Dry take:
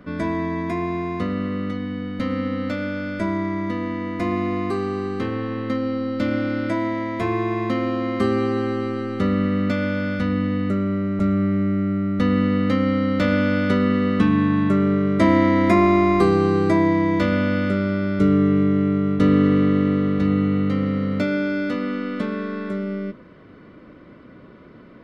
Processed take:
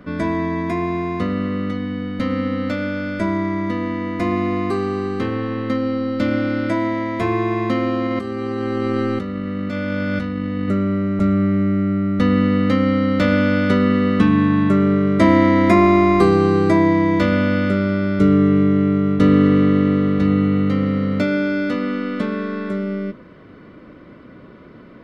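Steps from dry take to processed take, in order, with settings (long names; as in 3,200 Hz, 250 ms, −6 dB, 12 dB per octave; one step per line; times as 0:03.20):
0:08.05–0:10.68: compressor whose output falls as the input rises −26 dBFS, ratio −1
level +3 dB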